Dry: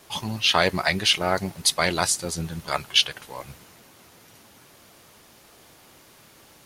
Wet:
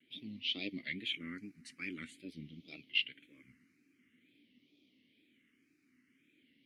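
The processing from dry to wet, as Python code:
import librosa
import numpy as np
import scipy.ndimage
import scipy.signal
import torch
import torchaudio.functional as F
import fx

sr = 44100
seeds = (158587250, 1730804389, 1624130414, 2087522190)

y = fx.vowel_filter(x, sr, vowel='i')
y = fx.wow_flutter(y, sr, seeds[0], rate_hz=2.1, depth_cents=140.0)
y = fx.phaser_stages(y, sr, stages=4, low_hz=570.0, high_hz=1600.0, hz=0.47, feedback_pct=5)
y = y * librosa.db_to_amplitude(-3.0)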